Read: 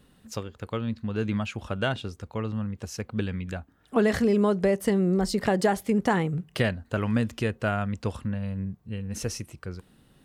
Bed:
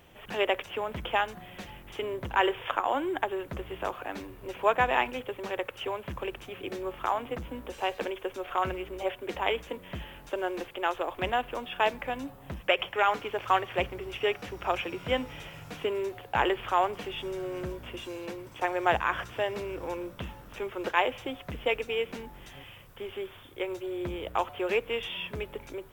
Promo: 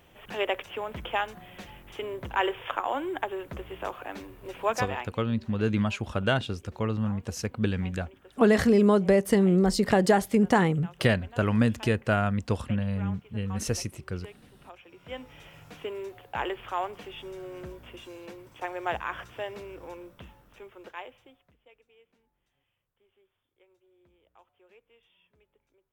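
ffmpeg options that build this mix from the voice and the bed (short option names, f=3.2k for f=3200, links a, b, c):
-filter_complex "[0:a]adelay=4450,volume=2dB[a];[1:a]volume=13dB,afade=t=out:st=4.61:d=0.55:silence=0.11885,afade=t=in:st=14.83:d=0.72:silence=0.188365,afade=t=out:st=19.48:d=2.09:silence=0.0530884[b];[a][b]amix=inputs=2:normalize=0"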